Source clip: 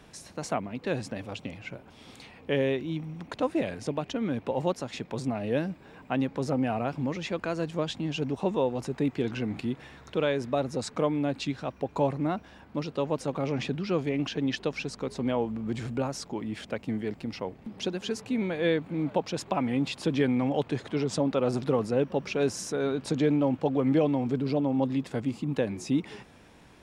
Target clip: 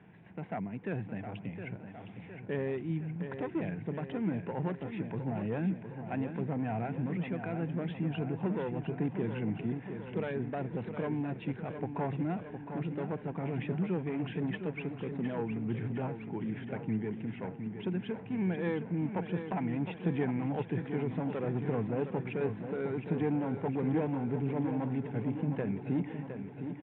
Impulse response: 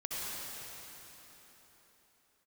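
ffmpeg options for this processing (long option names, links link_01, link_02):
-af "aresample=8000,aeval=exprs='clip(val(0),-1,0.0531)':channel_layout=same,aresample=44100,highpass=110,equalizer=frequency=110:width_type=q:width=4:gain=7,equalizer=frequency=180:width_type=q:width=4:gain=8,equalizer=frequency=260:width_type=q:width=4:gain=-4,equalizer=frequency=560:width_type=q:width=4:gain=-9,equalizer=frequency=1200:width_type=q:width=4:gain=-10,lowpass=frequency=2300:width=0.5412,lowpass=frequency=2300:width=1.3066,aecho=1:1:712|1424|2136|2848|3560|4272|4984|5696:0.376|0.226|0.135|0.0812|0.0487|0.0292|0.0175|0.0105,volume=-3dB"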